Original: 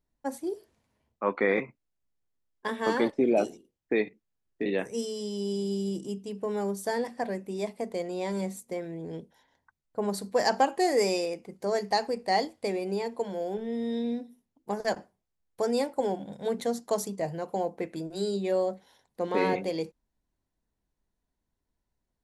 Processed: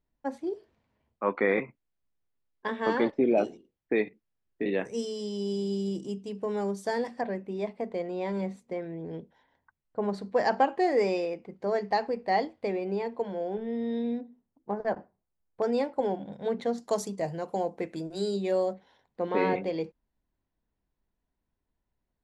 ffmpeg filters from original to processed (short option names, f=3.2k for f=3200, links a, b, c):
-af "asetnsamples=n=441:p=0,asendcmd='4.85 lowpass f 6200;7.21 lowpass f 2900;14.21 lowpass f 1500;15.62 lowpass f 3300;16.78 lowpass f 8200;18.73 lowpass f 3200',lowpass=3.5k"